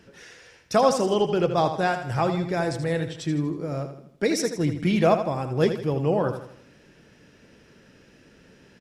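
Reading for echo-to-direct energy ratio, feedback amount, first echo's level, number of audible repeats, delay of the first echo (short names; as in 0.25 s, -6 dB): -8.0 dB, 44%, -9.0 dB, 4, 80 ms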